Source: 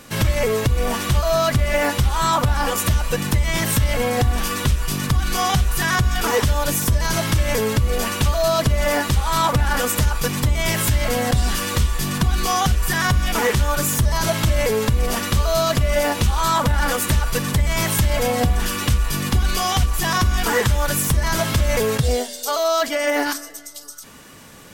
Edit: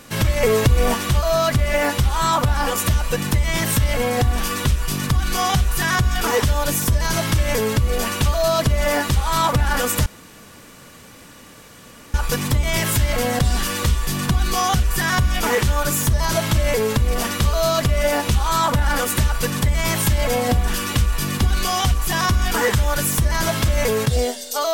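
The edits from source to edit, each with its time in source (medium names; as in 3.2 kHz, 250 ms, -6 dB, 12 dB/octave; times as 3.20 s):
0.43–0.94 s: gain +3.5 dB
10.06 s: insert room tone 2.08 s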